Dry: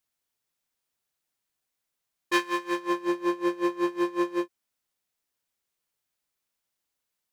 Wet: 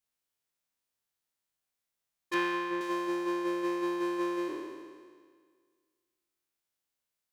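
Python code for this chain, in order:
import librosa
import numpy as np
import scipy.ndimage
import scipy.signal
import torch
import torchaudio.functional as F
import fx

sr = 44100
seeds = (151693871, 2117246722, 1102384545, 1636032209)

y = fx.spec_trails(x, sr, decay_s=1.79)
y = fx.bass_treble(y, sr, bass_db=7, treble_db=-13, at=(2.34, 2.81))
y = y * librosa.db_to_amplitude(-7.5)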